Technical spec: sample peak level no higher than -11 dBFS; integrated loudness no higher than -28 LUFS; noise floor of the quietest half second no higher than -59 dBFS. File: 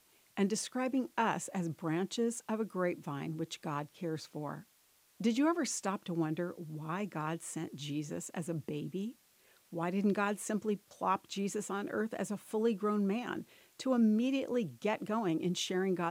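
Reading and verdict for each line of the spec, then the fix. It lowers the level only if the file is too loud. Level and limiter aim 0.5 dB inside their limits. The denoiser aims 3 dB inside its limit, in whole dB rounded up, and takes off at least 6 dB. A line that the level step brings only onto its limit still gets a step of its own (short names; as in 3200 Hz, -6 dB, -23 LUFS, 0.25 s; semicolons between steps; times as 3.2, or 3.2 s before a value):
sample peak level -17.5 dBFS: OK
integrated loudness -35.5 LUFS: OK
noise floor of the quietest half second -69 dBFS: OK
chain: none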